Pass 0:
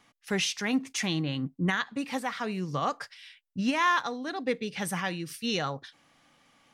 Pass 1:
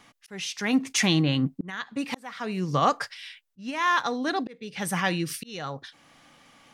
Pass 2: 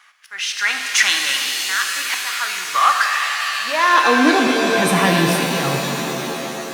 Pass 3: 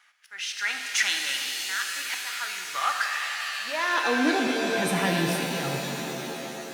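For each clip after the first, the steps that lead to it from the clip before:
slow attack 689 ms; trim +7.5 dB
waveshaping leveller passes 1; high-pass sweep 1.4 kHz -> 97 Hz, 3.28–4.75 s; pitch-shifted reverb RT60 3.9 s, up +7 st, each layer -2 dB, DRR 2.5 dB; trim +4 dB
band-stop 1.1 kHz, Q 6; trim -9 dB

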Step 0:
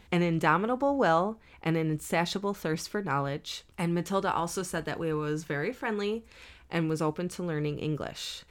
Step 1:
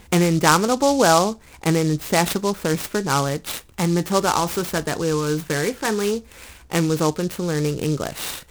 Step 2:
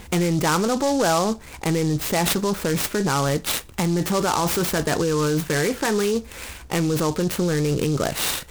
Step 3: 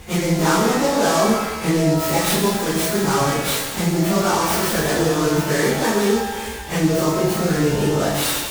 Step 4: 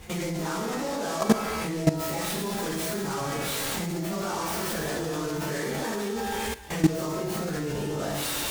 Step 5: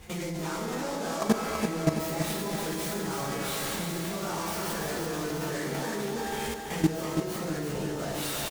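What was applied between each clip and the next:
delay time shaken by noise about 5.2 kHz, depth 0.058 ms; trim +9 dB
in parallel at -0.5 dB: compressor with a negative ratio -24 dBFS, ratio -0.5; on the sum: saturation -10.5 dBFS, distortion -16 dB; trim -2.5 dB
phase randomisation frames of 100 ms; pitch-shifted reverb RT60 1.3 s, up +12 st, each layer -8 dB, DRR 0.5 dB
level held to a coarse grid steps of 15 dB
feedback delay 332 ms, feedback 54%, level -6 dB; trim -3.5 dB

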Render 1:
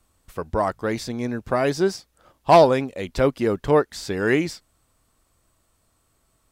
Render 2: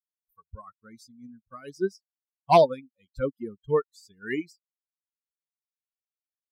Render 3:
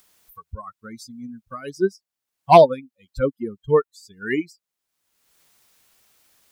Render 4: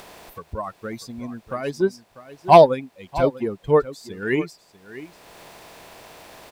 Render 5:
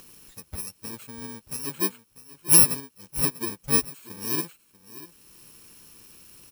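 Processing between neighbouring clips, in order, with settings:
expander on every frequency bin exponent 3; upward expansion 1.5:1, over -36 dBFS
dynamic bell 5.3 kHz, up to -5 dB, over -52 dBFS, Q 1.4; in parallel at -3 dB: upward compressor, threshold -31 dBFS; on the sum: trim +2 dB
spectral levelling over time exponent 0.6; delay 644 ms -15.5 dB; trim -1 dB
bit-reversed sample order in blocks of 64 samples; trim -5.5 dB

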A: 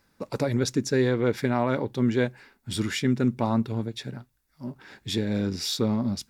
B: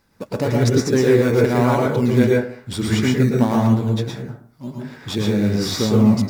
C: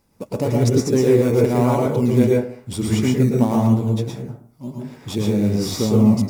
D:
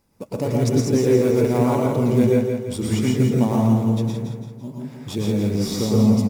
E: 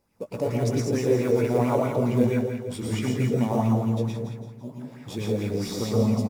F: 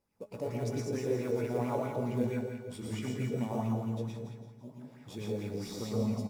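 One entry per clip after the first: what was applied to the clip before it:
in parallel at -9 dB: decimation with a swept rate 17×, swing 60% 1 Hz; on the sum: reverberation RT60 0.50 s, pre-delay 102 ms, DRR -2.5 dB; trim +1.5 dB
fifteen-band graphic EQ 1.6 kHz -11 dB, 4 kHz -6 dB, 10 kHz +3 dB
feedback delay 168 ms, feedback 47%, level -6.5 dB; trim -2.5 dB
doubling 17 ms -9 dB; sweeping bell 4.5 Hz 460–2600 Hz +10 dB; trim -7 dB
feedback comb 210 Hz, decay 1.5 s, mix 70%

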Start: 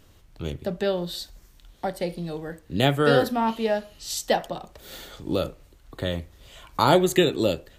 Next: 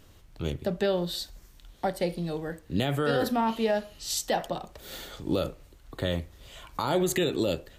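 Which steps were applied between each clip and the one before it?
peak limiter -16.5 dBFS, peak gain reduction 11.5 dB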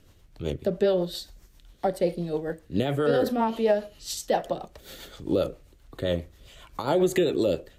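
rotary cabinet horn 7.5 Hz; dynamic bell 500 Hz, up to +7 dB, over -41 dBFS, Q 0.78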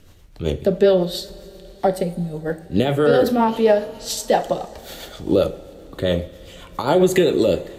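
time-frequency box 2.03–2.45 s, 300–6100 Hz -12 dB; two-slope reverb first 0.37 s, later 4.6 s, from -18 dB, DRR 10 dB; trim +7 dB

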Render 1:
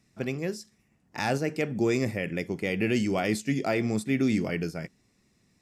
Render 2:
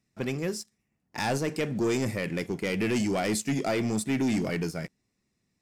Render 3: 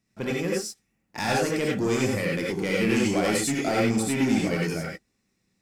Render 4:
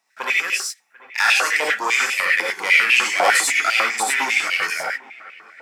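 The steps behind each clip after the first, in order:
waveshaping leveller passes 2; dynamic bell 9.1 kHz, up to +6 dB, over -48 dBFS, Q 0.72; trim -6 dB
gated-style reverb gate 120 ms rising, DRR -3.5 dB
feedback echo behind a low-pass 742 ms, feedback 44%, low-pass 2.2 kHz, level -19 dB; step-sequenced high-pass 10 Hz 850–2600 Hz; trim +8 dB

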